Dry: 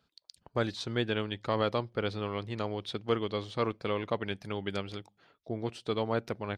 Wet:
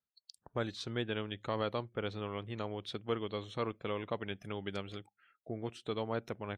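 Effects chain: spectral noise reduction 23 dB; in parallel at -1.5 dB: compressor, threshold -41 dBFS, peak gain reduction 16.5 dB; on the sum: gain -7 dB

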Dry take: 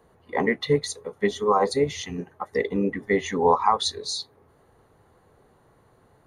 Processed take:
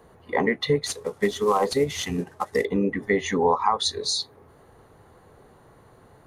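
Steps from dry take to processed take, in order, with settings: 0.86–2.65 CVSD 64 kbps; compressor 2:1, threshold -29 dBFS, peak gain reduction 8.5 dB; gain +6 dB

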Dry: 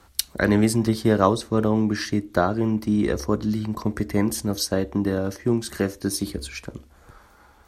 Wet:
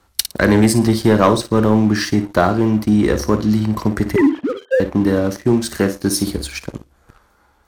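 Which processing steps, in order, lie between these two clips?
4.16–4.8 sine-wave speech; flutter echo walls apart 9.6 m, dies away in 0.29 s; sample leveller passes 2

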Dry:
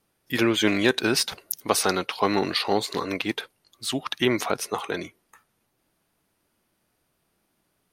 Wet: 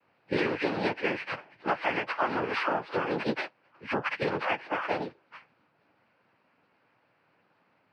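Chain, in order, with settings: frequency quantiser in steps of 4 st; elliptic low-pass 1800 Hz, stop band 80 dB; compressor 10:1, threshold -30 dBFS, peak gain reduction 15.5 dB; formant shift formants +3 st; noise vocoder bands 8; gain +5 dB

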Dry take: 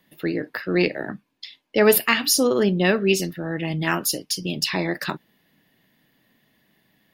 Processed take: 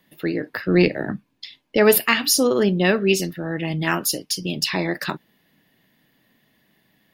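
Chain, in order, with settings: 0.52–1.77 low shelf 210 Hz +10.5 dB; gain +1 dB

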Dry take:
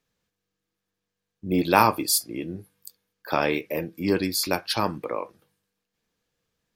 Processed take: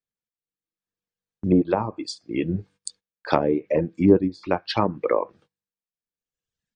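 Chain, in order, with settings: gate -56 dBFS, range -20 dB; reverb removal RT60 1.3 s; tremolo 0.75 Hz, depth 57%; AGC gain up to 16 dB; treble ducked by the level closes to 520 Hz, closed at -14 dBFS; brick-wall FIR low-pass 9300 Hz

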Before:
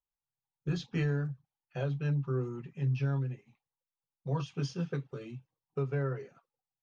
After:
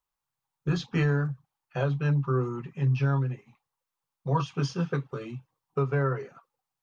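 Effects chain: bell 1100 Hz +8.5 dB 0.86 oct; gain +5.5 dB

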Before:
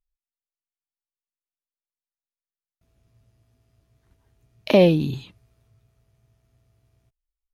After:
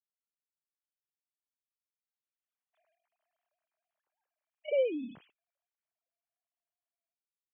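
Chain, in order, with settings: sine-wave speech; Doppler pass-by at 2.57, 10 m/s, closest 1.6 m; gain +8.5 dB

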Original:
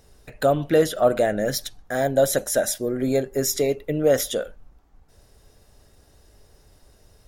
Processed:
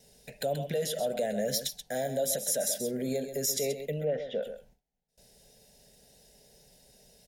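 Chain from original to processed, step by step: in parallel at +3 dB: compressor, threshold -27 dBFS, peak gain reduction 14 dB; on the sum: HPF 170 Hz 6 dB/oct; limiter -12.5 dBFS, peak gain reduction 7.5 dB; 4.01–4.43 LPF 2500 Hz 24 dB/oct; on a send: echo 0.131 s -9.5 dB; on the sum: gate with hold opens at -41 dBFS; bell 810 Hz -4 dB 2.2 oct; fixed phaser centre 320 Hz, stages 6; gain -5.5 dB

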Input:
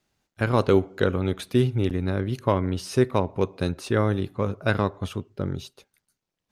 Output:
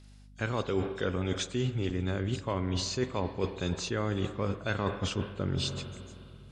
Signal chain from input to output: nonlinear frequency compression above 3100 Hz 1.5:1; high shelf 2700 Hz +11 dB; in parallel at -1 dB: limiter -17 dBFS, peak gain reduction 11.5 dB; on the sum: spring tank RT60 2.7 s, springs 44/51 ms, chirp 40 ms, DRR 13 dB; reverse; compressor 6:1, threshold -28 dBFS, peak gain reduction 16 dB; reverse; hum 50 Hz, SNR 21 dB

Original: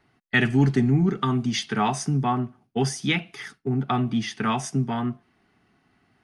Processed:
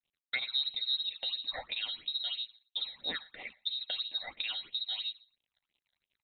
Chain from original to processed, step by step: compressor 3:1, threshold -34 dBFS, peak gain reduction 14.5 dB; crossover distortion -59 dBFS; inverted band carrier 4000 Hz; on a send: feedback echo 0.117 s, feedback 19%, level -24 dB; on the sum: phaser stages 8, 3 Hz, lowest notch 330–1600 Hz

